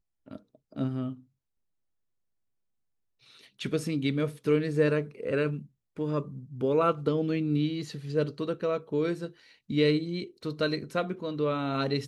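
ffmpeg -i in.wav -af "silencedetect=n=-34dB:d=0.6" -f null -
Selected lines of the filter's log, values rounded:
silence_start: 1.13
silence_end: 3.61 | silence_duration: 2.48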